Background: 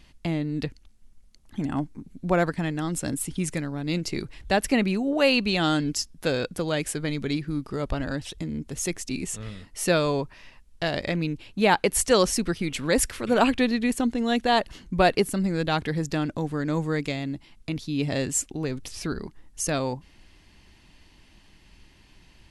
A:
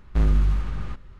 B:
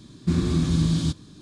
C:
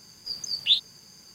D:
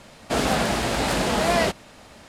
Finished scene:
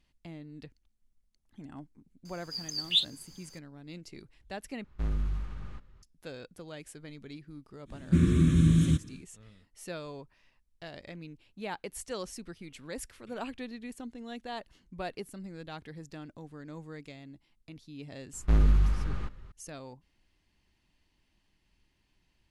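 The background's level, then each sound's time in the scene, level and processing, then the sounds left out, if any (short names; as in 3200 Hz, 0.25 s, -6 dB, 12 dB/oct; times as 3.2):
background -18 dB
2.25 add C -4.5 dB
4.84 replace with A -11.5 dB
7.85 add B, fades 0.10 s + fixed phaser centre 2000 Hz, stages 4
18.33 add A -3 dB
not used: D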